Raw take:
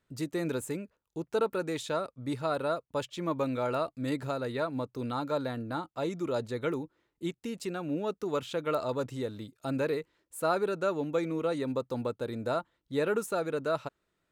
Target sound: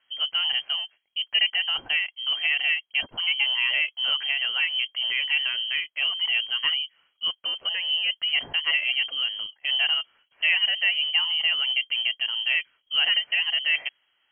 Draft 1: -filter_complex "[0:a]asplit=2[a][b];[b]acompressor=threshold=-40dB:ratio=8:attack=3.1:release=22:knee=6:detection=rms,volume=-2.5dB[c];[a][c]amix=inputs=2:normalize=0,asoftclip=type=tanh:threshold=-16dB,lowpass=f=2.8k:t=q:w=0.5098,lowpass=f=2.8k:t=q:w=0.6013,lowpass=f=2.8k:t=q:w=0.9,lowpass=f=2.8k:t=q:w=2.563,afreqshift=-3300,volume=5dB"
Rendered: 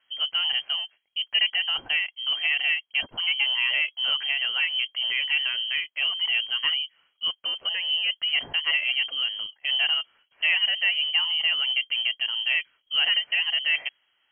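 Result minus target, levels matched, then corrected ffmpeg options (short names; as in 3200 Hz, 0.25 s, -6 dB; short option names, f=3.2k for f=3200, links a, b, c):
soft clip: distortion +13 dB
-filter_complex "[0:a]asplit=2[a][b];[b]acompressor=threshold=-40dB:ratio=8:attack=3.1:release=22:knee=6:detection=rms,volume=-2.5dB[c];[a][c]amix=inputs=2:normalize=0,asoftclip=type=tanh:threshold=-9dB,lowpass=f=2.8k:t=q:w=0.5098,lowpass=f=2.8k:t=q:w=0.6013,lowpass=f=2.8k:t=q:w=0.9,lowpass=f=2.8k:t=q:w=2.563,afreqshift=-3300,volume=5dB"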